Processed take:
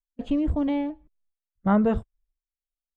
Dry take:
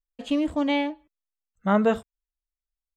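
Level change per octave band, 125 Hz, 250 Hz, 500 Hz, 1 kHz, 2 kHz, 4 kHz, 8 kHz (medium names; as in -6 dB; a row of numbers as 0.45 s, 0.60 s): +4.5 dB, +1.0 dB, -3.0 dB, -3.0 dB, -8.5 dB, under -10 dB, no reading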